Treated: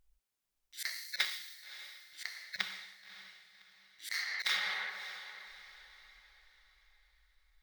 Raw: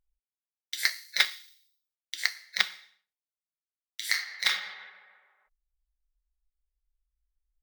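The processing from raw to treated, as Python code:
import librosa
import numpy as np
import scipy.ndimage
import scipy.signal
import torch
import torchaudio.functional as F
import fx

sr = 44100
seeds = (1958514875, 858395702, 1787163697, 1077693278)

y = fx.auto_swell(x, sr, attack_ms=352.0)
y = fx.bass_treble(y, sr, bass_db=11, treble_db=-3, at=(1.37, 4.12))
y = fx.echo_diffused(y, sr, ms=579, feedback_pct=40, wet_db=-13.0)
y = y * 10.0 ** (8.0 / 20.0)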